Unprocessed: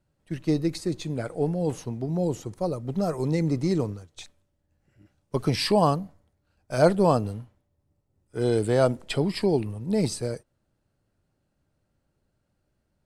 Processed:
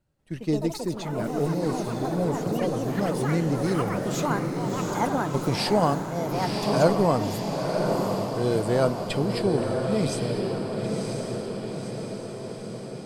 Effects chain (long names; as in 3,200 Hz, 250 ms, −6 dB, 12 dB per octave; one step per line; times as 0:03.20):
feedback delay with all-pass diffusion 1,000 ms, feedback 62%, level −3.5 dB
delay with pitch and tempo change per echo 189 ms, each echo +6 semitones, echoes 3, each echo −6 dB
level −1.5 dB